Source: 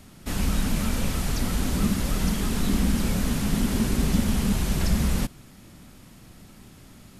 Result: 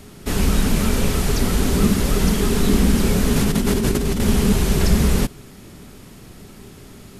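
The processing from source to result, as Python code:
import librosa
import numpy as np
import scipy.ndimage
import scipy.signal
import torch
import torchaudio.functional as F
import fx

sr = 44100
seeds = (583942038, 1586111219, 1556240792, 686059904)

y = fx.peak_eq(x, sr, hz=410.0, db=11.0, octaves=0.26)
y = fx.over_compress(y, sr, threshold_db=-25.0, ratio=-1.0, at=(3.36, 4.2))
y = y * librosa.db_to_amplitude(6.5)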